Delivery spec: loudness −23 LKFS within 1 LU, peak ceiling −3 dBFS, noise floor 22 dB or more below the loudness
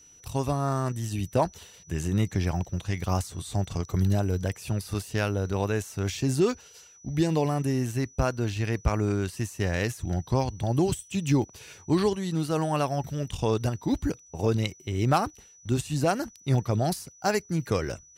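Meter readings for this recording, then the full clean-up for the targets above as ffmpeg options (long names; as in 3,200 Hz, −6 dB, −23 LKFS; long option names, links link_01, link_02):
interfering tone 5,900 Hz; level of the tone −52 dBFS; integrated loudness −28.0 LKFS; sample peak −13.0 dBFS; target loudness −23.0 LKFS
→ -af "bandreject=frequency=5900:width=30"
-af "volume=5dB"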